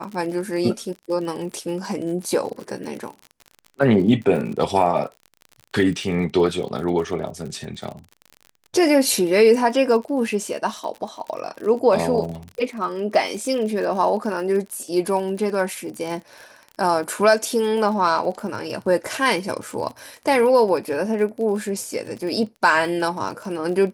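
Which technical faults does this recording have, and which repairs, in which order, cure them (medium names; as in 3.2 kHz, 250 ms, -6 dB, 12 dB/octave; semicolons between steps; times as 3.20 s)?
crackle 43 per s -30 dBFS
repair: de-click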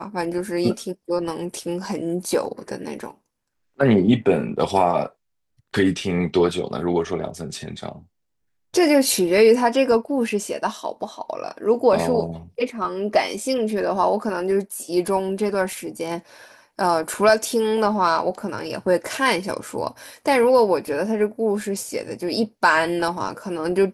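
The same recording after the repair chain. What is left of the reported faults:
nothing left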